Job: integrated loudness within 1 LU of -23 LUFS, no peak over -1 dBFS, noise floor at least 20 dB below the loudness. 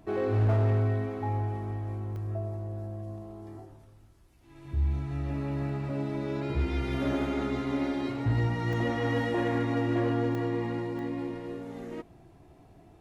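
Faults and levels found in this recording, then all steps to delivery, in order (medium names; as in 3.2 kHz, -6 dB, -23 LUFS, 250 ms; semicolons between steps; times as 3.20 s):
clipped samples 0.7%; clipping level -20.5 dBFS; dropouts 4; longest dropout 1.1 ms; loudness -30.5 LUFS; peak level -20.5 dBFS; loudness target -23.0 LUFS
-> clip repair -20.5 dBFS; interpolate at 2.16/8.73/10.35/10.99 s, 1.1 ms; trim +7.5 dB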